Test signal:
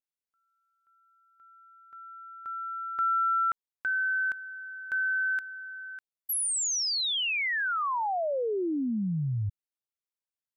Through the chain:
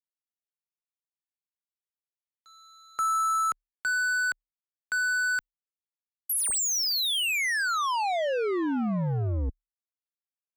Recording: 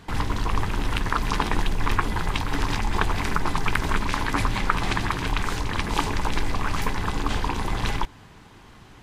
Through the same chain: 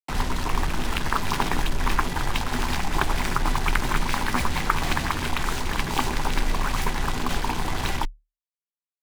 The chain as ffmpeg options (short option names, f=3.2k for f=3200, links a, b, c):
-af "acrusher=bits=4:mix=0:aa=0.5,afreqshift=-37"